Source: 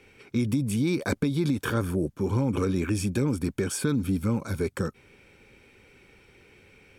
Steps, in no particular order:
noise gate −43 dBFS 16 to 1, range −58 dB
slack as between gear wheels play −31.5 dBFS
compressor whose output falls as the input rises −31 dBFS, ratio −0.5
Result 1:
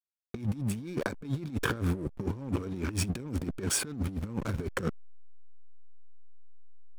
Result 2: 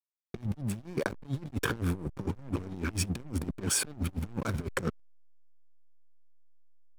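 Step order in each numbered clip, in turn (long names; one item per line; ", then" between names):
noise gate, then slack as between gear wheels, then compressor whose output falls as the input rises
noise gate, then compressor whose output falls as the input rises, then slack as between gear wheels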